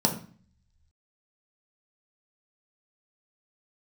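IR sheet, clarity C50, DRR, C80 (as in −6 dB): 10.0 dB, 1.0 dB, 14.0 dB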